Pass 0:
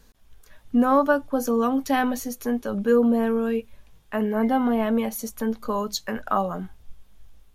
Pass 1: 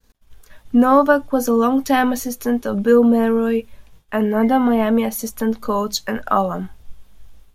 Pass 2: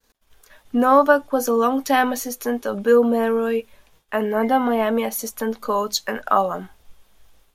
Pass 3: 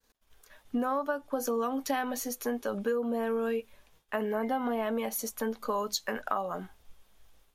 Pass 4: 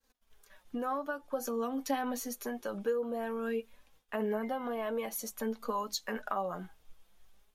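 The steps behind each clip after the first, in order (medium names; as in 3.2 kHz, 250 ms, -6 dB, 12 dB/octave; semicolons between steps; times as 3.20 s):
expander -47 dBFS; trim +6 dB
tone controls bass -12 dB, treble 0 dB
compression 10:1, threshold -20 dBFS, peak gain reduction 11.5 dB; trim -6.5 dB
flange 0.51 Hz, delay 3.6 ms, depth 3 ms, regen +40%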